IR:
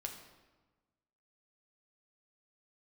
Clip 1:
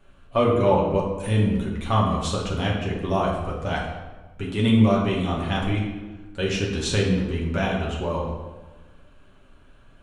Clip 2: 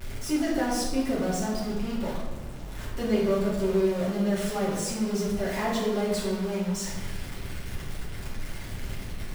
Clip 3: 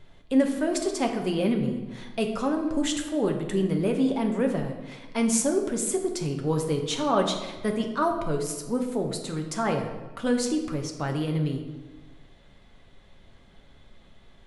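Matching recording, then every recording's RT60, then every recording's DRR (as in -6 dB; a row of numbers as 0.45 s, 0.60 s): 3; 1.3 s, 1.3 s, 1.3 s; -3.5 dB, -8.5 dB, 2.5 dB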